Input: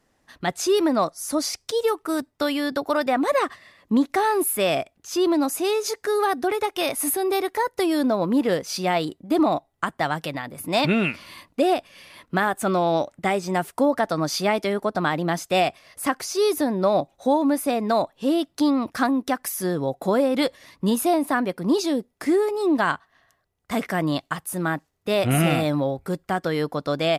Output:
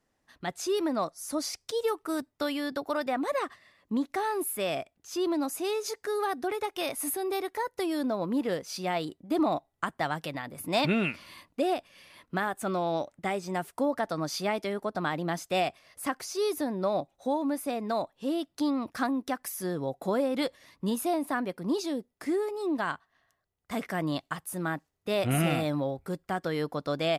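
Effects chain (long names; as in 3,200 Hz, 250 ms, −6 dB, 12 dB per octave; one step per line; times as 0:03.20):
speech leveller 2 s
level −8 dB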